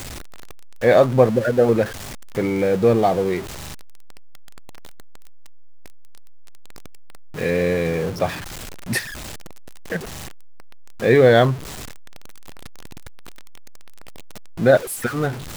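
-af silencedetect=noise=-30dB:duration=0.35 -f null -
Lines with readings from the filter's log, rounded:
silence_start: 0.00
silence_end: 0.83 | silence_duration: 0.83
silence_start: 1.88
silence_end: 2.37 | silence_duration: 0.48
silence_start: 3.41
silence_end: 7.36 | silence_duration: 3.94
silence_start: 8.40
silence_end: 8.89 | silence_duration: 0.48
silence_start: 9.01
silence_end: 9.92 | silence_duration: 0.90
silence_start: 10.05
silence_end: 11.02 | silence_duration: 0.97
silence_start: 11.56
silence_end: 14.59 | silence_duration: 3.03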